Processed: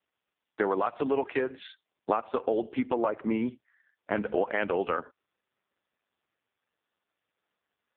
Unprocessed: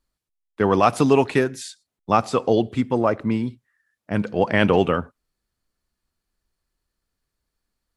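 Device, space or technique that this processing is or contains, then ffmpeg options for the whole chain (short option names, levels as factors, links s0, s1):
voicemail: -af "highpass=360,lowpass=3300,acompressor=threshold=0.0316:ratio=12,volume=2.37" -ar 8000 -c:a libopencore_amrnb -b:a 4750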